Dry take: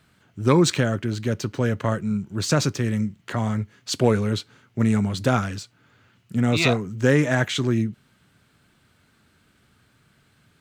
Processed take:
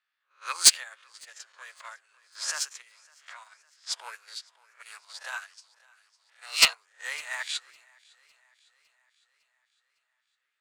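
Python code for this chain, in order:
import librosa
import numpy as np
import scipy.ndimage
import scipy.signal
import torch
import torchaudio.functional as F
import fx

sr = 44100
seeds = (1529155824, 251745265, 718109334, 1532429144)

p1 = fx.spec_swells(x, sr, rise_s=0.38)
p2 = fx.env_lowpass(p1, sr, base_hz=2800.0, full_db=-15.0)
p3 = scipy.signal.sosfilt(scipy.signal.cheby2(4, 60, 250.0, 'highpass', fs=sr, output='sos'), p2)
p4 = fx.high_shelf(p3, sr, hz=2900.0, db=6.5)
p5 = fx.level_steps(p4, sr, step_db=17)
p6 = p4 + F.gain(torch.from_numpy(p5), 3.0).numpy()
p7 = np.clip(p6, -10.0 ** (-7.5 / 20.0), 10.0 ** (-7.5 / 20.0))
p8 = fx.formant_shift(p7, sr, semitones=2)
p9 = p8 + fx.echo_feedback(p8, sr, ms=556, feedback_pct=56, wet_db=-14.0, dry=0)
y = fx.upward_expand(p9, sr, threshold_db=-28.0, expansion=2.5)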